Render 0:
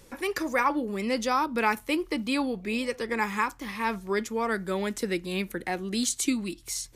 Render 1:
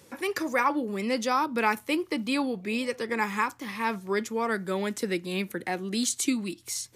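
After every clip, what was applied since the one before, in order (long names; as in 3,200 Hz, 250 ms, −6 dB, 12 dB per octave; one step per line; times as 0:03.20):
high-pass filter 91 Hz 24 dB per octave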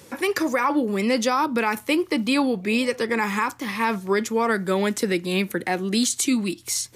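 brickwall limiter −19.5 dBFS, peak gain reduction 7.5 dB
level +7.5 dB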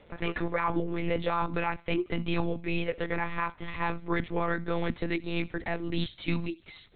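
one-pitch LPC vocoder at 8 kHz 170 Hz
delay with a high-pass on its return 77 ms, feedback 45%, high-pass 2,600 Hz, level −22 dB
level −7 dB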